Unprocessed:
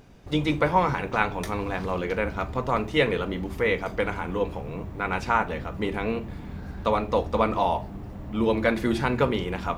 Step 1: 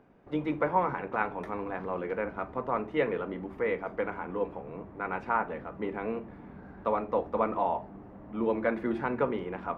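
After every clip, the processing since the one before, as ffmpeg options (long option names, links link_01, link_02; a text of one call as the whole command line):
ffmpeg -i in.wav -filter_complex "[0:a]acrossover=split=180 2100:gain=0.2 1 0.0631[link_01][link_02][link_03];[link_01][link_02][link_03]amix=inputs=3:normalize=0,volume=-4.5dB" out.wav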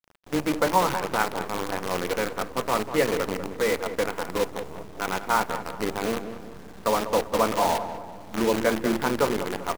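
ffmpeg -i in.wav -filter_complex "[0:a]acrusher=bits=6:dc=4:mix=0:aa=0.000001,asplit=2[link_01][link_02];[link_02]adelay=194,lowpass=frequency=1800:poles=1,volume=-10dB,asplit=2[link_03][link_04];[link_04]adelay=194,lowpass=frequency=1800:poles=1,volume=0.46,asplit=2[link_05][link_06];[link_06]adelay=194,lowpass=frequency=1800:poles=1,volume=0.46,asplit=2[link_07][link_08];[link_08]adelay=194,lowpass=frequency=1800:poles=1,volume=0.46,asplit=2[link_09][link_10];[link_10]adelay=194,lowpass=frequency=1800:poles=1,volume=0.46[link_11];[link_01][link_03][link_05][link_07][link_09][link_11]amix=inputs=6:normalize=0,volume=5dB" out.wav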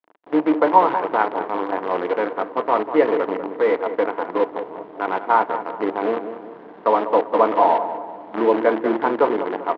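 ffmpeg -i in.wav -af "highpass=280,equalizer=frequency=310:width_type=q:width=4:gain=9,equalizer=frequency=450:width_type=q:width=4:gain=5,equalizer=frequency=680:width_type=q:width=4:gain=6,equalizer=frequency=960:width_type=q:width=4:gain=7,equalizer=frequency=2500:width_type=q:width=4:gain=-5,lowpass=frequency=2800:width=0.5412,lowpass=frequency=2800:width=1.3066,volume=1.5dB" out.wav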